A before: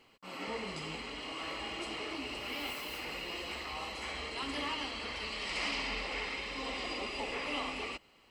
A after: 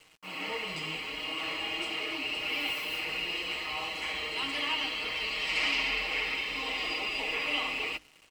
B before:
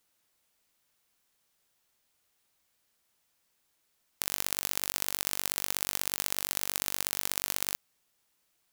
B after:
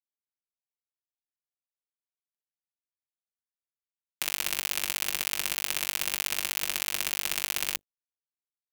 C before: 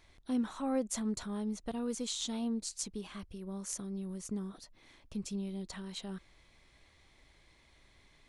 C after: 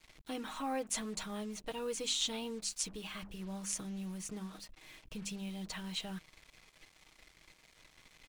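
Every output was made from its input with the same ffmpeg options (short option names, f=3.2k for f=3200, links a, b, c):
-filter_complex "[0:a]equalizer=f=2.6k:w=1.7:g=8,bandreject=f=50:t=h:w=6,bandreject=f=100:t=h:w=6,bandreject=f=150:t=h:w=6,bandreject=f=200:t=h:w=6,bandreject=f=250:t=h:w=6,bandreject=f=300:t=h:w=6,aecho=1:1:6.4:0.6,acrossover=split=480[a][b];[a]alimiter=level_in=13.5dB:limit=-24dB:level=0:latency=1:release=252,volume=-13.5dB[c];[c][b]amix=inputs=2:normalize=0,acrusher=bits=8:mix=0:aa=0.5"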